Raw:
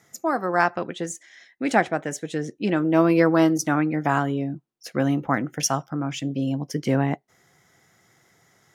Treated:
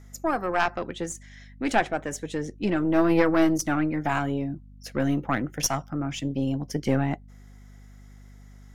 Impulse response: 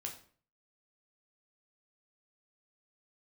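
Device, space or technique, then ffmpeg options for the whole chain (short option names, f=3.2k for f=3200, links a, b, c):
valve amplifier with mains hum: -af "aeval=exprs='(tanh(3.55*val(0)+0.75)-tanh(0.75))/3.55':c=same,aeval=exprs='val(0)+0.00355*(sin(2*PI*50*n/s)+sin(2*PI*2*50*n/s)/2+sin(2*PI*3*50*n/s)/3+sin(2*PI*4*50*n/s)/4+sin(2*PI*5*50*n/s)/5)':c=same,volume=2.5dB"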